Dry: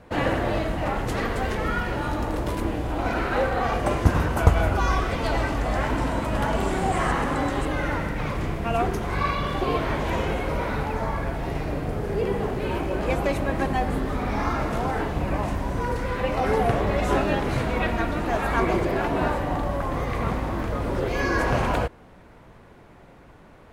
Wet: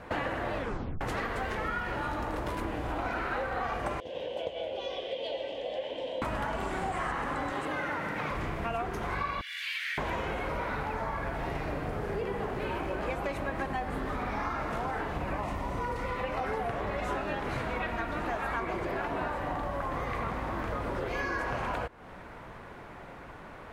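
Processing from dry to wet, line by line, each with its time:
0.55 s: tape stop 0.46 s
4.00–6.22 s: two resonant band-passes 1.3 kHz, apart 2.6 oct
7.52–8.31 s: high-pass 140 Hz
9.41–9.98 s: steep high-pass 1.8 kHz 48 dB/octave
15.40–16.24 s: Butterworth band-stop 1.6 kHz, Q 6.5
whole clip: peaking EQ 1.4 kHz +7.5 dB 2.6 oct; compression, threshold -31 dBFS

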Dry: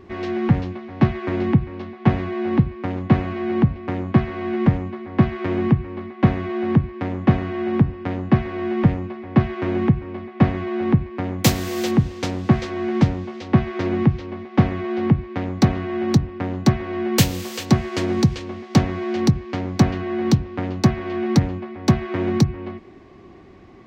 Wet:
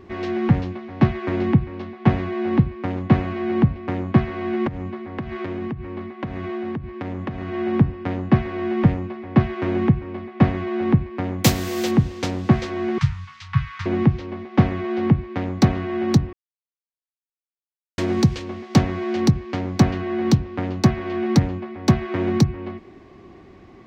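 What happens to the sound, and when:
4.67–7.53 s: compression 10:1, threshold -24 dBFS
12.98–13.86 s: elliptic band-stop 140–1100 Hz
16.33–17.98 s: mute

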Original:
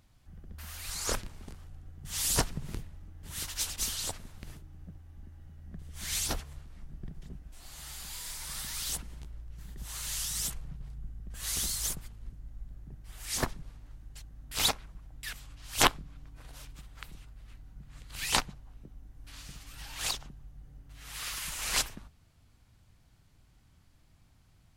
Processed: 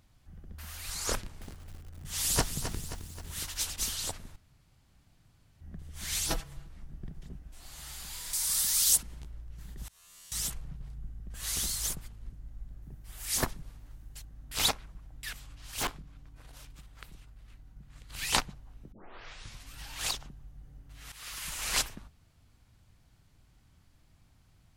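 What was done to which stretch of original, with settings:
1.15–3.38 s: bit-crushed delay 265 ms, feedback 55%, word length 8-bit, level -9 dB
4.36–5.61 s: room tone
6.27–6.68 s: comb 6.1 ms, depth 77%
8.33–9.03 s: tone controls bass -4 dB, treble +13 dB
9.88–10.32 s: feedback comb 86 Hz, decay 1.9 s, mix 100%
12.82–14.25 s: treble shelf 9.7 kHz +9.5 dB
15.71–18.09 s: valve stage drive 28 dB, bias 0.55
18.92 s: tape start 0.77 s
21.12–21.52 s: fade in, from -12.5 dB

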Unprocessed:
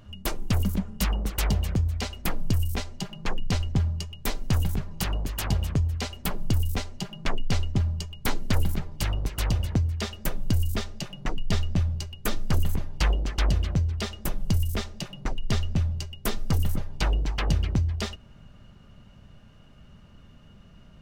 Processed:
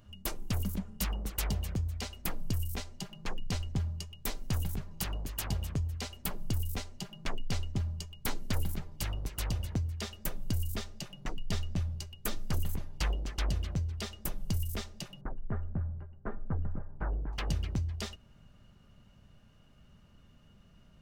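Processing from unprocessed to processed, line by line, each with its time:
15.21–17.33 s: Chebyshev low-pass 1.6 kHz, order 4
whole clip: treble shelf 6.4 kHz +7 dB; trim -8.5 dB

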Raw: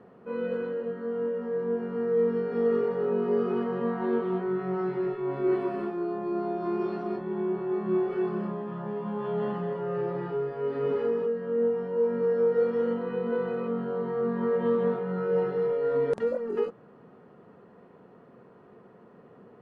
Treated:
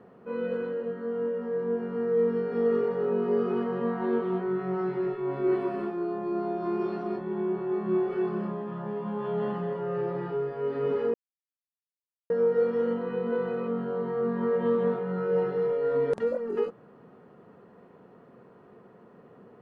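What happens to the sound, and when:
11.14–12.30 s: mute

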